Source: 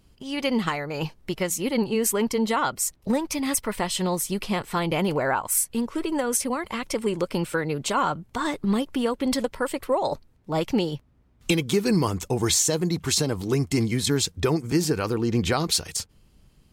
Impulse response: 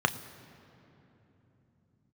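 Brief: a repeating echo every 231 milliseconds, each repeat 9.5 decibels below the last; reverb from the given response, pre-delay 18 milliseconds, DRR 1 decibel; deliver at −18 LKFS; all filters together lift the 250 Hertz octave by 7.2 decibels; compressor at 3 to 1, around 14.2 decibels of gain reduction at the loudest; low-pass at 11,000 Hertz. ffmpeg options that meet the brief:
-filter_complex "[0:a]lowpass=11000,equalizer=frequency=250:width_type=o:gain=9,acompressor=threshold=-32dB:ratio=3,aecho=1:1:231|462|693|924:0.335|0.111|0.0365|0.012,asplit=2[link_01][link_02];[1:a]atrim=start_sample=2205,adelay=18[link_03];[link_02][link_03]afir=irnorm=-1:irlink=0,volume=-13dB[link_04];[link_01][link_04]amix=inputs=2:normalize=0,volume=11.5dB"

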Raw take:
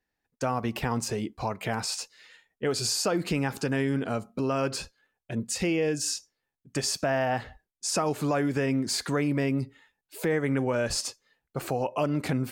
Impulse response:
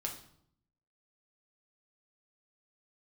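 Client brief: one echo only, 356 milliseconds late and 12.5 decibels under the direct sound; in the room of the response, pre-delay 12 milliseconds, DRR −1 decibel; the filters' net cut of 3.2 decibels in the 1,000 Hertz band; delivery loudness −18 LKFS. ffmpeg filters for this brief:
-filter_complex "[0:a]equalizer=frequency=1000:width_type=o:gain=-4.5,aecho=1:1:356:0.237,asplit=2[link_01][link_02];[1:a]atrim=start_sample=2205,adelay=12[link_03];[link_02][link_03]afir=irnorm=-1:irlink=0,volume=0.5dB[link_04];[link_01][link_04]amix=inputs=2:normalize=0,volume=8dB"

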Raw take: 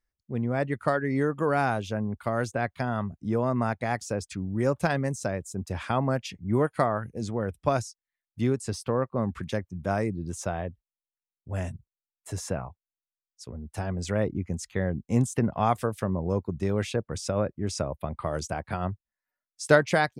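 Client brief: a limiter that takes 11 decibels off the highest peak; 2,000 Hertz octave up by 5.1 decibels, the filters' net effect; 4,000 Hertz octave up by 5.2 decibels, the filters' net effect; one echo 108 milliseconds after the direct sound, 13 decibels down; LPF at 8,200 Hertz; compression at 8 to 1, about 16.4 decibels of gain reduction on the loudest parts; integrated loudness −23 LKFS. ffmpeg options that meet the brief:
ffmpeg -i in.wav -af "lowpass=8200,equalizer=frequency=2000:width_type=o:gain=6,equalizer=frequency=4000:width_type=o:gain=5.5,acompressor=threshold=-29dB:ratio=8,alimiter=limit=-24dB:level=0:latency=1,aecho=1:1:108:0.224,volume=13.5dB" out.wav

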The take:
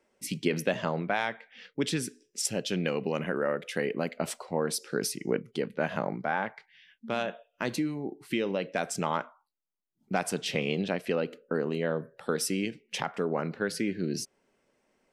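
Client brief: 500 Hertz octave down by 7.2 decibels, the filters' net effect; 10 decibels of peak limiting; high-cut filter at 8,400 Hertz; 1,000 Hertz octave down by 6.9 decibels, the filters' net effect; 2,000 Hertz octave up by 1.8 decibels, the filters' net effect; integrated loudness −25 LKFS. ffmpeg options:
ffmpeg -i in.wav -af "lowpass=8400,equalizer=frequency=500:width_type=o:gain=-7,equalizer=frequency=1000:width_type=o:gain=-9,equalizer=frequency=2000:width_type=o:gain=6,volume=11dB,alimiter=limit=-11dB:level=0:latency=1" out.wav

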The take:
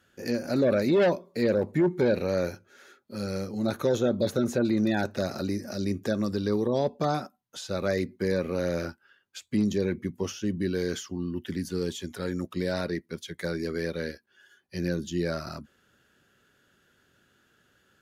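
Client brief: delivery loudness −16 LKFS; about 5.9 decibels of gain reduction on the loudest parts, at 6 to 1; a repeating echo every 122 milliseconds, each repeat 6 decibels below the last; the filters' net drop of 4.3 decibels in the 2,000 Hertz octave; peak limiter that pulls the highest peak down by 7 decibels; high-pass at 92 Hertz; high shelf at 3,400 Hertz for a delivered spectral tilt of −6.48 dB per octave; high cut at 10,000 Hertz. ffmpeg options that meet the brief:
ffmpeg -i in.wav -af "highpass=92,lowpass=10000,equalizer=frequency=2000:width_type=o:gain=-4,highshelf=frequency=3400:gain=-7,acompressor=threshold=-26dB:ratio=6,alimiter=level_in=0.5dB:limit=-24dB:level=0:latency=1,volume=-0.5dB,aecho=1:1:122|244|366|488|610|732:0.501|0.251|0.125|0.0626|0.0313|0.0157,volume=18dB" out.wav

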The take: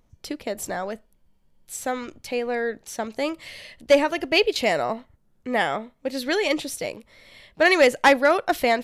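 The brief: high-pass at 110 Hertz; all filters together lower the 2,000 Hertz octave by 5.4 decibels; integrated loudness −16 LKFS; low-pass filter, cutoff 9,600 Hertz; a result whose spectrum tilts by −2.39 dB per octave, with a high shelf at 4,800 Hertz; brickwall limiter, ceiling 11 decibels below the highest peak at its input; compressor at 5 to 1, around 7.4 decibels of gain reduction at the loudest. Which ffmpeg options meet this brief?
ffmpeg -i in.wav -af "highpass=110,lowpass=9600,equalizer=frequency=2000:width_type=o:gain=-8,highshelf=frequency=4800:gain=8.5,acompressor=threshold=-20dB:ratio=5,volume=16dB,alimiter=limit=-6dB:level=0:latency=1" out.wav

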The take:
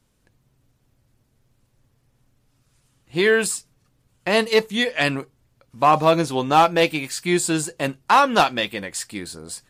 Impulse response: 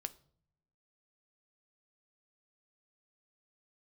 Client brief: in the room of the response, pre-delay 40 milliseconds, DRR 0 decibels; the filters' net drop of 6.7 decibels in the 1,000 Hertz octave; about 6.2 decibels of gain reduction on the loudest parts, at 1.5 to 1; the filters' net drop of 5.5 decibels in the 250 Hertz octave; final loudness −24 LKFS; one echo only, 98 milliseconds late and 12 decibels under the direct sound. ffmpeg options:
-filter_complex "[0:a]equalizer=frequency=250:width_type=o:gain=-7.5,equalizer=frequency=1000:width_type=o:gain=-8.5,acompressor=threshold=-33dB:ratio=1.5,aecho=1:1:98:0.251,asplit=2[link_01][link_02];[1:a]atrim=start_sample=2205,adelay=40[link_03];[link_02][link_03]afir=irnorm=-1:irlink=0,volume=2.5dB[link_04];[link_01][link_04]amix=inputs=2:normalize=0,volume=1.5dB"

